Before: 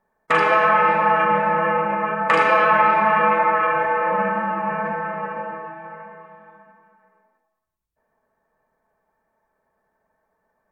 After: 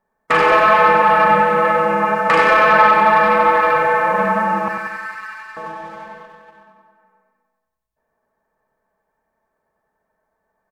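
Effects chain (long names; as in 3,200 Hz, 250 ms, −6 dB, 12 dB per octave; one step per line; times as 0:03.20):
0:04.68–0:05.57: inverse Chebyshev high-pass filter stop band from 390 Hz, stop band 60 dB
leveller curve on the samples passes 1
repeating echo 94 ms, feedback 57%, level −6 dB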